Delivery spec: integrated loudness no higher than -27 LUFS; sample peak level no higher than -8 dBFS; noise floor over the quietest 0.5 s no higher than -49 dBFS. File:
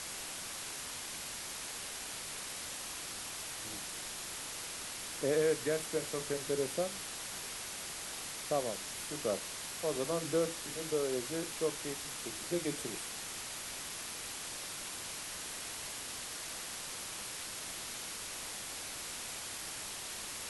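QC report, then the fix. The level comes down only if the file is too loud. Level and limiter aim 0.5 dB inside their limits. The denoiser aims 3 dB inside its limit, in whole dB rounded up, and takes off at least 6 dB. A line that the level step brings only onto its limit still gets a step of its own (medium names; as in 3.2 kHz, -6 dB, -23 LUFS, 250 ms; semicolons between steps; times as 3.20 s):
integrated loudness -38.0 LUFS: pass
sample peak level -20.0 dBFS: pass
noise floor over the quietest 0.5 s -43 dBFS: fail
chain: noise reduction 9 dB, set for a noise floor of -43 dBFS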